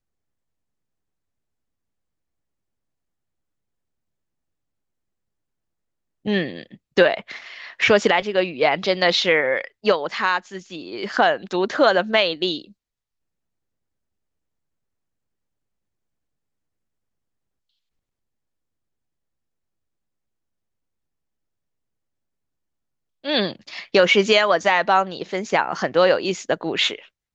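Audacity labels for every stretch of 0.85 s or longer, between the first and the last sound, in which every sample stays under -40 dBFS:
12.700000	23.240000	silence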